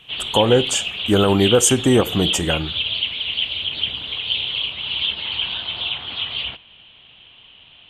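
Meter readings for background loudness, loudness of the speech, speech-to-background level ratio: -22.5 LUFS, -18.0 LUFS, 4.5 dB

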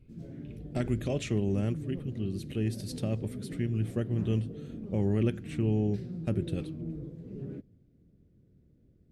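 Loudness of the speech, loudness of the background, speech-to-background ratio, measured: -32.5 LUFS, -41.5 LUFS, 9.0 dB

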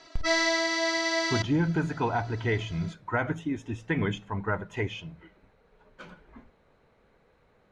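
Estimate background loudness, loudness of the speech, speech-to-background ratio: -26.0 LUFS, -30.5 LUFS, -4.5 dB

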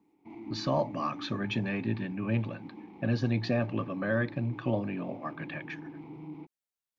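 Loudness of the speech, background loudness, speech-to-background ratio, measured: -32.5 LUFS, -46.0 LUFS, 13.5 dB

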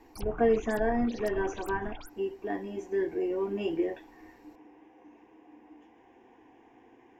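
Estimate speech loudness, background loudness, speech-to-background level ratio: -31.0 LUFS, -45.0 LUFS, 14.0 dB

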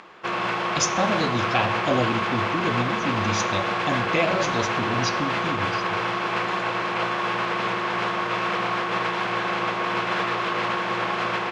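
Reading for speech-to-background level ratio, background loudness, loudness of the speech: -2.5 dB, -25.0 LUFS, -27.5 LUFS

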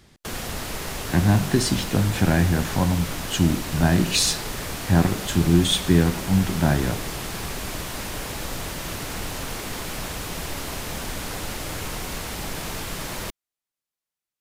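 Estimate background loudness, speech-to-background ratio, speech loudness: -31.0 LUFS, 9.5 dB, -21.5 LUFS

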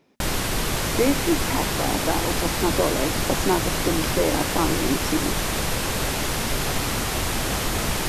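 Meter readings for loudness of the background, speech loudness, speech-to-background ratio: -24.5 LUFS, -26.0 LUFS, -1.5 dB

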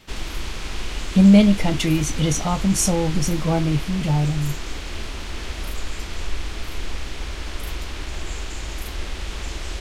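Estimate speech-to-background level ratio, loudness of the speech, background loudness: 12.5 dB, -19.5 LUFS, -32.0 LUFS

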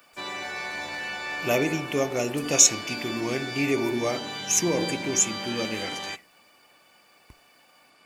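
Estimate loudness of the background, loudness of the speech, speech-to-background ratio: -33.0 LUFS, -24.5 LUFS, 8.5 dB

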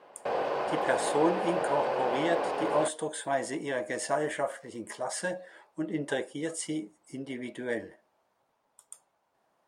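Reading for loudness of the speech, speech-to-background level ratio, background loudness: -32.5 LUFS, -1.0 dB, -31.5 LUFS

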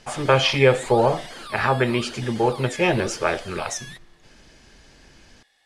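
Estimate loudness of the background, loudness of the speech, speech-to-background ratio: -37.5 LUFS, -21.5 LUFS, 16.0 dB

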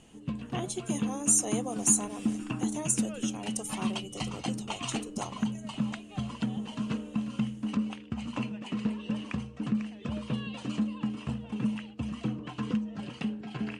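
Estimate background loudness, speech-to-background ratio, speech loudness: -34.5 LUFS, 3.5 dB, -31.0 LUFS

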